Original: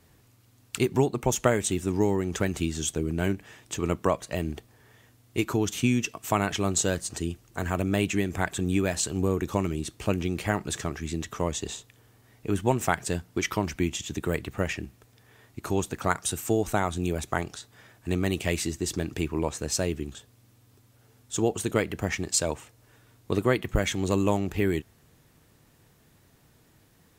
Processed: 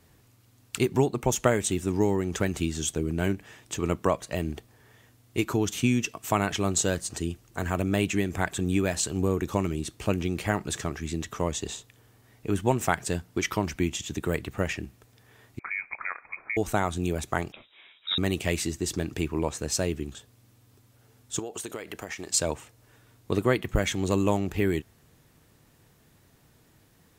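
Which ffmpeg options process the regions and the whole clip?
ffmpeg -i in.wav -filter_complex "[0:a]asettb=1/sr,asplit=3[link_01][link_02][link_03];[link_01]atrim=end=15.594[link_04];[link_02]atrim=start=15.59:end=16.57,asetpts=PTS-STARTPTS,afade=type=in:duration=0.004:curve=qsin,afade=type=out:start_time=0.976:duration=0.004:curve=qsin,highpass=200,acompressor=threshold=-27dB:ratio=5:attack=3.2:release=140:knee=1:detection=peak,lowpass=frequency=2200:width_type=q:width=0.5098,lowpass=frequency=2200:width_type=q:width=0.6013,lowpass=frequency=2200:width_type=q:width=0.9,lowpass=frequency=2200:width_type=q:width=2.563,afreqshift=-2600[link_05];[link_03]atrim=start=16.566[link_06];[link_04][link_05]acrossfade=duration=0.004:curve1=hsin:curve2=qsin[link_07];[link_07][link_06]acrossfade=duration=0.004:curve1=qsin:curve2=hsin,asettb=1/sr,asplit=3[link_08][link_09][link_10];[link_08]atrim=end=17.524[link_11];[link_09]atrim=start=17.52:end=18.18,asetpts=PTS-STARTPTS,afade=type=in:duration=0.004:curve=qsin,afade=type=out:start_time=0.656:duration=0.004:curve=qsin,highpass=frequency=170:width=0.5412,highpass=frequency=170:width=1.3066,equalizer=frequency=720:width=2.4:gain=5.5,lowpass=frequency=3400:width_type=q:width=0.5098,lowpass=frequency=3400:width_type=q:width=0.6013,lowpass=frequency=3400:width_type=q:width=0.9,lowpass=frequency=3400:width_type=q:width=2.563,afreqshift=-4000[link_12];[link_10]atrim=start=18.176[link_13];[link_11][link_12]acrossfade=duration=0.004:curve1=hsin:curve2=qsin[link_14];[link_14][link_13]acrossfade=duration=0.004:curve1=qsin:curve2=hsin,asettb=1/sr,asplit=3[link_15][link_16][link_17];[link_15]atrim=end=21.394[link_18];[link_16]atrim=start=21.39:end=22.29,asetpts=PTS-STARTPTS,afade=type=in:duration=0.004:curve=qsin,afade=type=out:start_time=0.896:duration=0.004:curve=qsin,bass=frequency=250:gain=-13,treble=frequency=4000:gain=2,acompressor=threshold=-31dB:ratio=10:attack=3.2:release=140:knee=1:detection=peak[link_19];[link_17]atrim=start=22.286[link_20];[link_18][link_19]acrossfade=duration=0.004:curve1=hsin:curve2=qsin[link_21];[link_21][link_20]acrossfade=duration=0.004:curve1=qsin:curve2=hsin" out.wav

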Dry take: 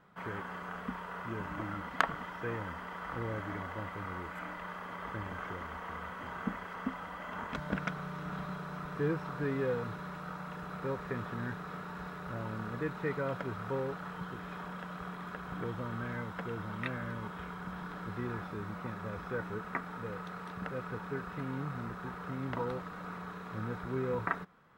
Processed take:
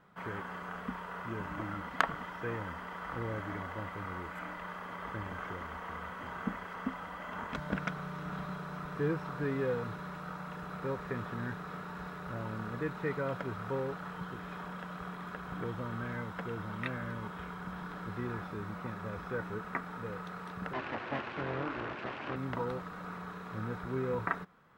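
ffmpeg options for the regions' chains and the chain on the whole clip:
ffmpeg -i in.wav -filter_complex "[0:a]asettb=1/sr,asplit=3[link_01][link_02][link_03];[link_01]atrim=end=20.734[link_04];[link_02]atrim=start=20.73:end=22.36,asetpts=PTS-STARTPTS,afade=type=in:duration=0.004:curve=qsin,afade=type=out:start_time=1.626:duration=0.004:curve=qsin,acontrast=64,aeval=exprs='abs(val(0))':channel_layout=same,highpass=120,lowpass=3100[link_05];[link_03]atrim=start=22.356[link_06];[link_04][link_05]acrossfade=duration=0.004:curve1=hsin:curve2=qsin[link_07];[link_07][link_06]acrossfade=duration=0.004:curve1=qsin:curve2=hsin" out.wav

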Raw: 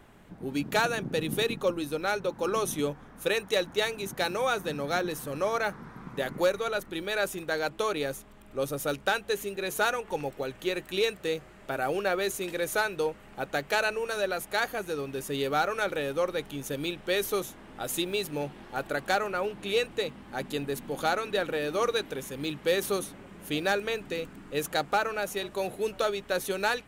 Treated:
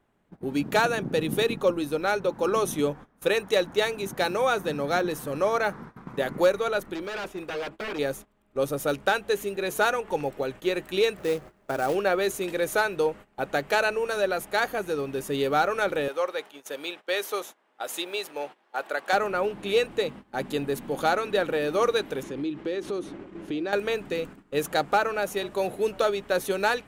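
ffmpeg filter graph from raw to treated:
ffmpeg -i in.wav -filter_complex "[0:a]asettb=1/sr,asplit=3[link_01][link_02][link_03];[link_01]atrim=end=6.944[link_04];[link_02]atrim=start=6.94:end=7.99,asetpts=PTS-STARTPTS,afade=type=in:duration=0.004:curve=qsin,afade=type=out:start_time=1.046:duration=0.004:curve=qsin,aeval=exprs='0.0335*(abs(mod(val(0)/0.0335+3,4)-2)-1)':channel_layout=same,acrossover=split=4100[link_05][link_06];[link_06]acompressor=threshold=-55dB:ratio=4:attack=1:release=60[link_07];[link_05][link_07]amix=inputs=2:normalize=0,equalizer=frequency=130:width_type=o:width=1.4:gain=-6[link_08];[link_03]atrim=start=7.986[link_09];[link_04][link_08]acrossfade=duration=0.004:curve1=hsin:curve2=qsin[link_10];[link_10][link_09]acrossfade=duration=0.004:curve1=qsin:curve2=hsin,asettb=1/sr,asplit=3[link_11][link_12][link_13];[link_11]atrim=end=11.184[link_14];[link_12]atrim=start=11.18:end=11.95,asetpts=PTS-STARTPTS,afade=type=in:duration=0.004:curve=qsin,afade=type=out:start_time=0.766:duration=0.004:curve=qsin,highshelf=frequency=3200:gain=-11,acompressor=mode=upward:threshold=-41dB:ratio=2.5:attack=3.2:release=140:knee=2.83:detection=peak,acrusher=bits=3:mode=log:mix=0:aa=0.000001[link_15];[link_13]atrim=start=11.946[link_16];[link_14][link_15]acrossfade=duration=0.004:curve1=hsin:curve2=qsin[link_17];[link_17][link_16]acrossfade=duration=0.004:curve1=qsin:curve2=hsin,asettb=1/sr,asplit=3[link_18][link_19][link_20];[link_18]atrim=end=16.084[link_21];[link_19]atrim=start=16.08:end=19.13,asetpts=PTS-STARTPTS,afade=type=in:duration=0.004:curve=qsin,afade=type=out:start_time=3.046:duration=0.004:curve=qsin,highpass=580,equalizer=frequency=12000:width_type=o:width=1.2:gain=-4[link_22];[link_20]atrim=start=19.126[link_23];[link_21][link_22]acrossfade=duration=0.004:curve1=hsin:curve2=qsin[link_24];[link_24][link_23]acrossfade=duration=0.004:curve1=qsin:curve2=hsin,asettb=1/sr,asplit=3[link_25][link_26][link_27];[link_25]atrim=end=22.234[link_28];[link_26]atrim=start=22.23:end=23.73,asetpts=PTS-STARTPTS,afade=type=in:duration=0.004:curve=qsin,afade=type=out:start_time=1.496:duration=0.004:curve=qsin,lowpass=5400,equalizer=frequency=330:width=3.9:gain=13.5,acompressor=threshold=-34dB:ratio=3:attack=3.2:release=140:knee=1:detection=peak[link_29];[link_27]atrim=start=23.726[link_30];[link_28][link_29]acrossfade=duration=0.004:curve1=hsin:curve2=qsin[link_31];[link_31][link_30]acrossfade=duration=0.004:curve1=qsin:curve2=hsin,agate=range=-18dB:threshold=-43dB:ratio=16:detection=peak,equalizer=frequency=490:width=0.3:gain=4.5" out.wav

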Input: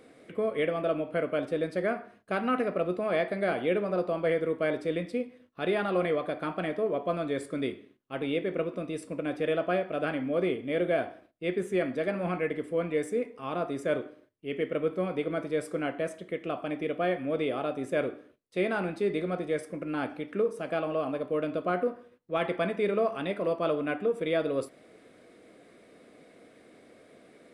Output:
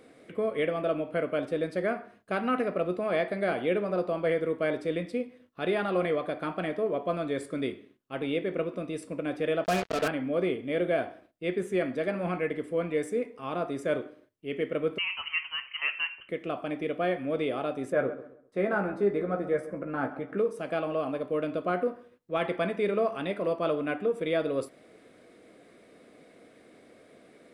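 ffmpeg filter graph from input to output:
ffmpeg -i in.wav -filter_complex "[0:a]asettb=1/sr,asplit=3[link_01][link_02][link_03];[link_01]atrim=end=9.644[link_04];[link_02]atrim=start=9.64:end=10.08,asetpts=PTS-STARTPTS,afade=type=in:duration=0.004:curve=qsin,afade=type=out:start_time=0.436:duration=0.004:curve=qsin,aecho=1:1:4.5:0.99,atrim=end_sample=19404,acrusher=bits=4:mix=0:aa=0.5[link_05];[link_03]atrim=start=10.076[link_06];[link_04][link_05]acrossfade=duration=0.004:curve1=hsin:curve2=qsin[link_07];[link_07][link_06]acrossfade=duration=0.004:curve1=qsin:curve2=hsin,asettb=1/sr,asplit=3[link_08][link_09][link_10];[link_08]atrim=end=14.984[link_11];[link_09]atrim=start=14.98:end=16.29,asetpts=PTS-STARTPTS,afade=type=in:duration=0.004:curve=qsin,afade=type=out:start_time=1.306:duration=0.004:curve=qsin,highpass=frequency=850:width_type=q:width=5.3,lowpass=frequency=2900:width_type=q:width=0.5098,lowpass=frequency=2900:width_type=q:width=0.6013,lowpass=frequency=2900:width_type=q:width=0.9,lowpass=frequency=2900:width_type=q:width=2.563,afreqshift=-3400[link_12];[link_10]atrim=start=16.286[link_13];[link_11][link_12]acrossfade=duration=0.004:curve1=hsin:curve2=qsin[link_14];[link_14][link_13]acrossfade=duration=0.004:curve1=qsin:curve2=hsin,asettb=1/sr,asplit=3[link_15][link_16][link_17];[link_15]atrim=end=17.924[link_18];[link_16]atrim=start=17.92:end=20.38,asetpts=PTS-STARTPTS,afade=type=in:duration=0.004:curve=qsin,afade=type=out:start_time=2.456:duration=0.004:curve=qsin,highshelf=frequency=2100:width_type=q:width=1.5:gain=-10,asplit=2[link_19][link_20];[link_20]adelay=15,volume=-6.5dB[link_21];[link_19][link_21]amix=inputs=2:normalize=0,atrim=end_sample=108486,asplit=2[link_22][link_23];[link_23]adelay=133,lowpass=frequency=1700:poles=1,volume=-14dB,asplit=2[link_24][link_25];[link_25]adelay=133,lowpass=frequency=1700:poles=1,volume=0.33,asplit=2[link_26][link_27];[link_27]adelay=133,lowpass=frequency=1700:poles=1,volume=0.33[link_28];[link_22][link_24][link_26][link_28]amix=inputs=4:normalize=0,atrim=end_sample=108486[link_29];[link_17]atrim=start=20.376[link_30];[link_18][link_29]acrossfade=duration=0.004:curve1=hsin:curve2=qsin[link_31];[link_31][link_30]acrossfade=duration=0.004:curve1=qsin:curve2=hsin" out.wav

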